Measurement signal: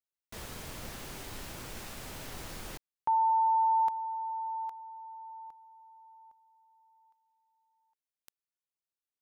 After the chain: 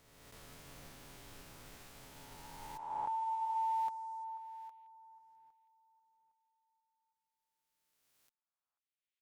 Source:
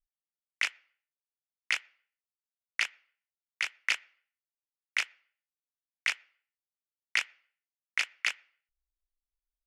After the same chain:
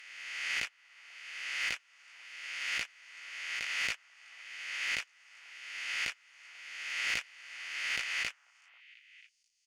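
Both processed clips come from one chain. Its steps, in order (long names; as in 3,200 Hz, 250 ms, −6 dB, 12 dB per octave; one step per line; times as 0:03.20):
peak hold with a rise ahead of every peak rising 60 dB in 2.39 s
comb filter 7.1 ms, depth 34%
asymmetric clip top −17.5 dBFS
on a send: echo through a band-pass that steps 489 ms, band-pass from 1,000 Hz, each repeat 1.4 octaves, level −11 dB
on the sum: expander for the loud parts 1.5 to 1, over −48 dBFS
level −8.5 dB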